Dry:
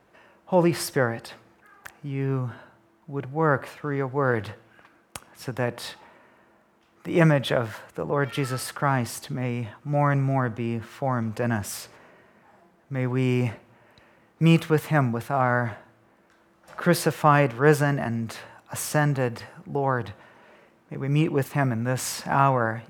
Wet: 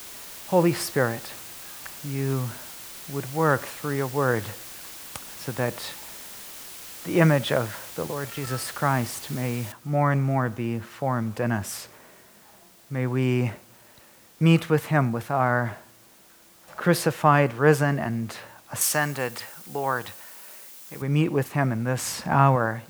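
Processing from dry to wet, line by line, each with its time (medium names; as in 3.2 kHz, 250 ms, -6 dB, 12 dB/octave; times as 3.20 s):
3.13–4.14 s: treble shelf 3.9 kHz -> 5.7 kHz +8.5 dB
8.07–8.47 s: level held to a coarse grid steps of 10 dB
9.72 s: noise floor step -41 dB -55 dB
18.81–21.02 s: tilt EQ +3 dB/octave
22.06–22.56 s: bass shelf 220 Hz +7 dB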